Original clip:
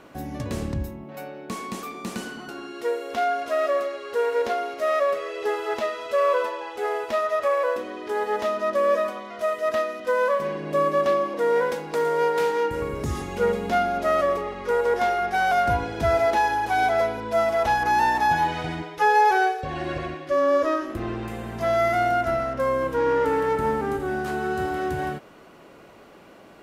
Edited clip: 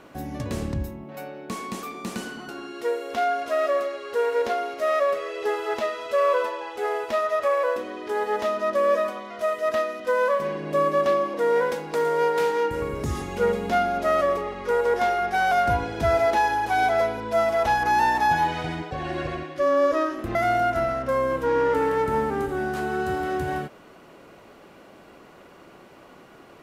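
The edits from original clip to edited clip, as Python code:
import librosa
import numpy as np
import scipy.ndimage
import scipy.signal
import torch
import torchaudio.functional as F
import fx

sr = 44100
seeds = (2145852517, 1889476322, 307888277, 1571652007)

y = fx.edit(x, sr, fx.cut(start_s=18.91, length_s=0.71),
    fx.cut(start_s=21.06, length_s=0.8), tone=tone)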